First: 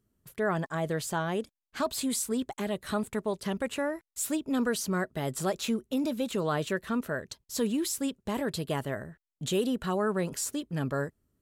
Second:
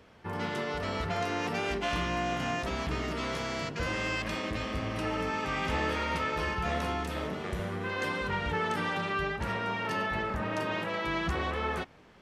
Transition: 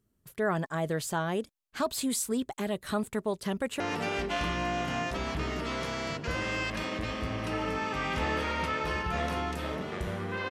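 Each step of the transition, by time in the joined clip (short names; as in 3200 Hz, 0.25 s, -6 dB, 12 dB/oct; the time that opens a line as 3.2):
first
3.49–3.8 echo throw 0.29 s, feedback 50%, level -13 dB
3.8 switch to second from 1.32 s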